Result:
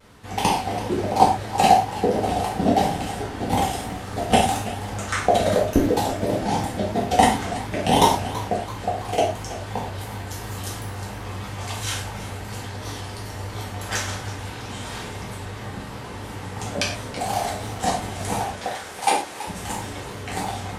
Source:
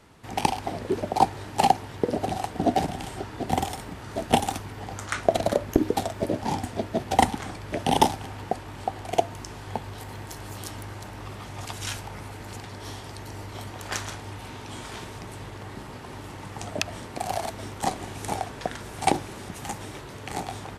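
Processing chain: vibrato 2.9 Hz 96 cents; 18.53–19.47 Bessel high-pass 520 Hz, order 2; non-linear reverb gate 0.15 s falling, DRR -5 dB; warbling echo 0.328 s, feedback 50%, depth 125 cents, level -15 dB; gain -1 dB

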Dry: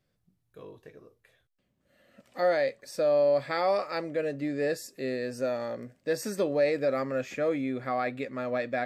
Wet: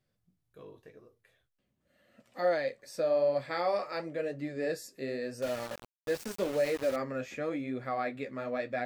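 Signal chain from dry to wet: flange 0.9 Hz, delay 7.7 ms, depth 7.4 ms, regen -43%; 5.42–6.96 sample gate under -37 dBFS

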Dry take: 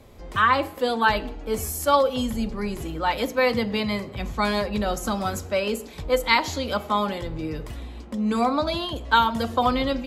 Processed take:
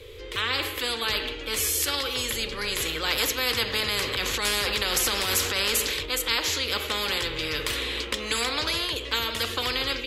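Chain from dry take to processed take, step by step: low shelf 430 Hz -11.5 dB; 3.8–6.06 transient shaper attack -7 dB, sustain +5 dB; AGC gain up to 14 dB; EQ curve 100 Hz 0 dB, 200 Hz -26 dB, 470 Hz +8 dB, 670 Hz -26 dB, 1100 Hz -14 dB, 3300 Hz +2 dB, 5500 Hz -10 dB; spectral compressor 4:1; gain -5.5 dB

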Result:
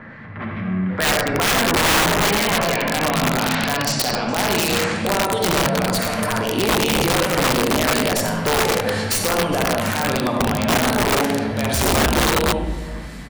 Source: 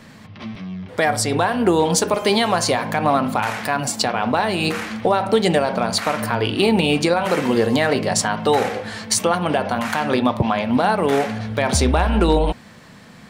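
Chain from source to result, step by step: tracing distortion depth 0.04 ms; in parallel at 0 dB: compressor 10:1, threshold -29 dBFS, peak gain reduction 17.5 dB; on the sum: limiter -12 dBFS, peak gain reduction 8 dB; AGC gain up to 4 dB; low-pass sweep 1700 Hz -> 12000 Hz, 1.97–5.56; whine 2000 Hz -46 dBFS; 6.38–6.93 hard clip -10.5 dBFS, distortion -34 dB; harmonic tremolo 2.7 Hz, depth 50%, crossover 2200 Hz; 1.67–2.46 doubler 19 ms -4.5 dB; echo 0.414 s -19 dB; on a send at -1 dB: reverb RT60 1.0 s, pre-delay 47 ms; on the sum: wrapped overs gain 9 dB; gain -2.5 dB

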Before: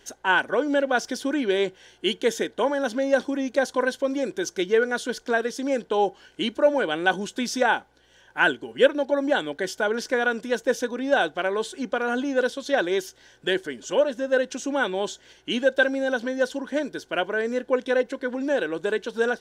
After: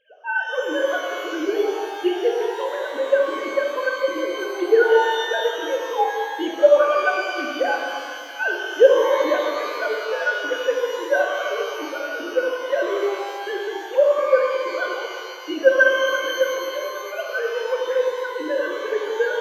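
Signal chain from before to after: sine-wave speech; shimmer reverb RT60 2.1 s, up +12 st, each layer -8 dB, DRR -0.5 dB

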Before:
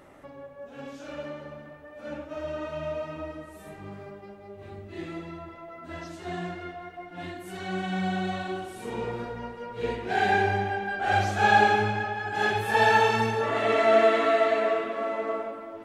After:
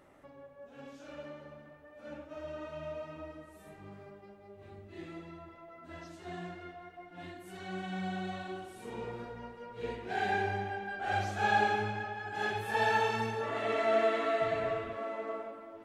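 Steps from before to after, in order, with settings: 14.41–14.97 octaver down 2 oct, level -3 dB; gain -8.5 dB

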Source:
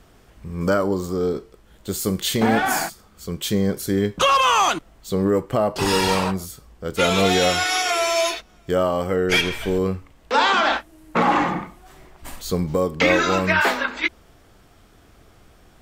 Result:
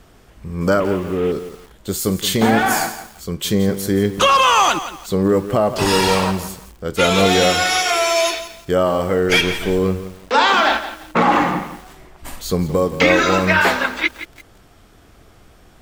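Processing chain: 0.8–1.32 CVSD 16 kbps; lo-fi delay 0.171 s, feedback 35%, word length 6-bit, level -12 dB; gain +3.5 dB

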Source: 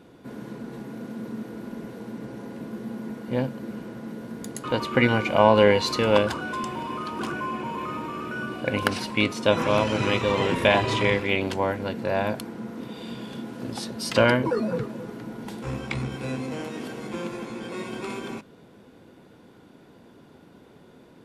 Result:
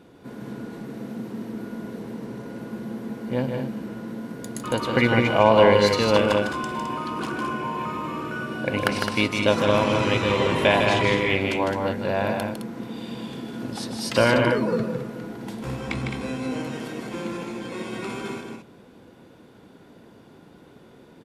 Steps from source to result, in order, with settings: loudspeakers at several distances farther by 53 m -5 dB, 73 m -7 dB

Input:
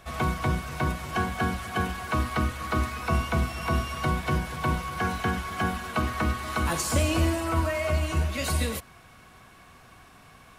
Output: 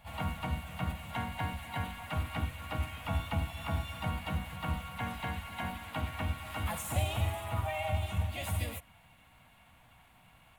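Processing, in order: fixed phaser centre 1300 Hz, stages 6; harmoniser +4 st -1 dB, +7 st -18 dB; gain -8.5 dB

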